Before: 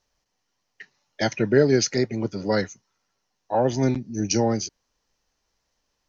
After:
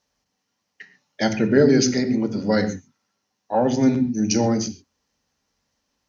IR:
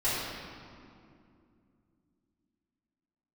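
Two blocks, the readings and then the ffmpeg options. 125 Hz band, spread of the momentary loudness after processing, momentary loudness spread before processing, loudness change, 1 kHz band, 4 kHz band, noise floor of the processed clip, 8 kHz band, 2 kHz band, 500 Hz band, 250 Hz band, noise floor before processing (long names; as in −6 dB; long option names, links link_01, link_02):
+0.5 dB, 10 LU, 9 LU, +3.0 dB, +1.5 dB, +1.5 dB, −77 dBFS, can't be measured, +1.5 dB, +1.5 dB, +6.0 dB, −77 dBFS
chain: -filter_complex "[0:a]highpass=80,asplit=2[link_01][link_02];[link_02]lowshelf=frequency=360:width_type=q:width=1.5:gain=9.5[link_03];[1:a]atrim=start_sample=2205,afade=type=out:start_time=0.15:duration=0.01,atrim=end_sample=7056,asetrate=31311,aresample=44100[link_04];[link_03][link_04]afir=irnorm=-1:irlink=0,volume=-18dB[link_05];[link_01][link_05]amix=inputs=2:normalize=0"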